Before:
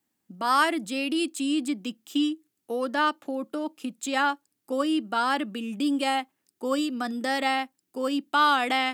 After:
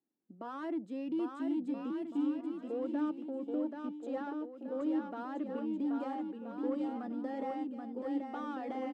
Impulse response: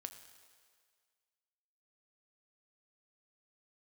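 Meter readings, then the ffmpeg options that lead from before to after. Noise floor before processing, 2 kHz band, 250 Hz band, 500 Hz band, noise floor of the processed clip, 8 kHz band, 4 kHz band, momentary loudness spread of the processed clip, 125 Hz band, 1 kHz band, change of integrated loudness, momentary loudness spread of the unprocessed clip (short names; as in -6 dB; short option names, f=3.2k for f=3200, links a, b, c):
-80 dBFS, -24.0 dB, -6.0 dB, -8.0 dB, -54 dBFS, under -30 dB, under -25 dB, 6 LU, n/a, -17.5 dB, -10.5 dB, 11 LU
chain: -af "asoftclip=type=tanh:threshold=-24dB,bandpass=f=360:t=q:w=1.4:csg=0,aecho=1:1:780|1326|1708|1976|2163:0.631|0.398|0.251|0.158|0.1,volume=-4dB"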